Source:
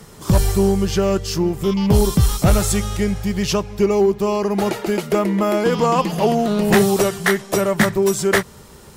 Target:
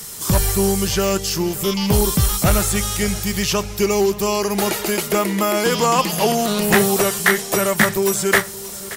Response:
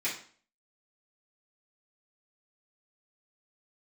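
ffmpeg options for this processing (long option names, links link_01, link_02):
-filter_complex "[0:a]asplit=2[link_01][link_02];[link_02]adelay=577,lowpass=frequency=2200:poles=1,volume=-17.5dB,asplit=2[link_03][link_04];[link_04]adelay=577,lowpass=frequency=2200:poles=1,volume=0.53,asplit=2[link_05][link_06];[link_06]adelay=577,lowpass=frequency=2200:poles=1,volume=0.53,asplit=2[link_07][link_08];[link_08]adelay=577,lowpass=frequency=2200:poles=1,volume=0.53,asplit=2[link_09][link_10];[link_10]adelay=577,lowpass=frequency=2200:poles=1,volume=0.53[link_11];[link_01][link_03][link_05][link_07][link_09][link_11]amix=inputs=6:normalize=0,crystalizer=i=8.5:c=0,acrossover=split=2500[link_12][link_13];[link_13]acompressor=threshold=-18dB:ratio=4:attack=1:release=60[link_14];[link_12][link_14]amix=inputs=2:normalize=0,volume=-3dB"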